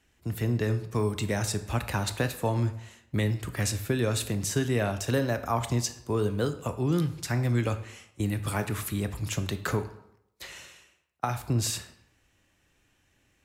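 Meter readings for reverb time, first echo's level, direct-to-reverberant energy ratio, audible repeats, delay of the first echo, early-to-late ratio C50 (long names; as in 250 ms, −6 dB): 0.80 s, no echo audible, 9.5 dB, no echo audible, no echo audible, 12.5 dB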